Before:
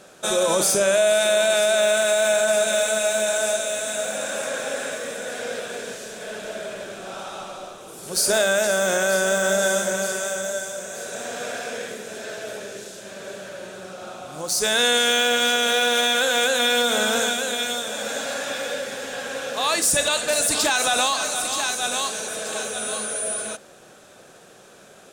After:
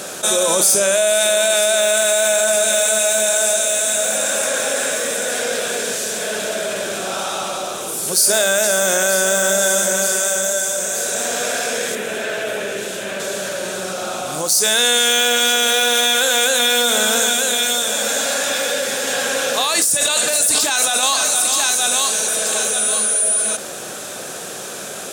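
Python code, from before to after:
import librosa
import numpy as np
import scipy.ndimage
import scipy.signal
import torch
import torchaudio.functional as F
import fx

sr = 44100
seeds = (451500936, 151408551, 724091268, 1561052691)

y = fx.high_shelf_res(x, sr, hz=3700.0, db=-8.0, q=1.5, at=(11.95, 13.2))
y = fx.over_compress(y, sr, threshold_db=-24.0, ratio=-1.0, at=(19.07, 21.03))
y = fx.highpass(y, sr, hz=120.0, slope=6)
y = fx.high_shelf(y, sr, hz=5200.0, db=10.5)
y = fx.env_flatten(y, sr, amount_pct=50)
y = y * librosa.db_to_amplitude(-1.0)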